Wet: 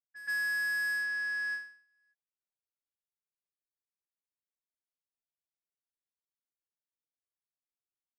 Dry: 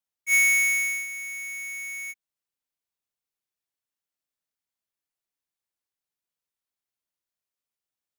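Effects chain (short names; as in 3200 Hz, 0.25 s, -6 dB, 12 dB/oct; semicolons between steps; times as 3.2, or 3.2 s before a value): HPF 430 Hz; inverted band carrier 3900 Hz; limiter -25 dBFS, peak gain reduction 9.5 dB; sample leveller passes 3; doubler 12 ms -8 dB; low-pass opened by the level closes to 810 Hz, open at -25 dBFS; pre-echo 0.124 s -15 dB; ending taper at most 120 dB/s; gain -6.5 dB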